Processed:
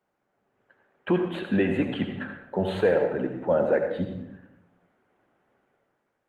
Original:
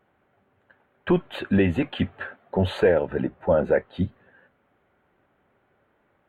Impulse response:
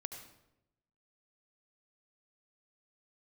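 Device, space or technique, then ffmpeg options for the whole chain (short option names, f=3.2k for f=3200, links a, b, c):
far-field microphone of a smart speaker: -filter_complex "[0:a]asettb=1/sr,asplit=3[a][b][c];[a]atrim=end=2.244[d];[b]atrim=start=2.24:end=2.71,asetpts=PTS-STARTPTS,afade=t=in:d=0.004:c=qsin,afade=t=out:st=0.466:d=0.004:c=qsin,equalizer=f=2.8k:w=1.3:g=-4[e];[c]atrim=start=2.706[f];[d][e]acrossfade=d=0.004:c1=hsin:c2=qsin[g];[g][f]acrossfade=d=0.004:c1=qsin:c2=hsin[h];[1:a]atrim=start_sample=2205[i];[h][i]afir=irnorm=-1:irlink=0,highpass=150,dynaudnorm=f=100:g=11:m=8dB,volume=-6.5dB" -ar 48000 -c:a libopus -b:a 24k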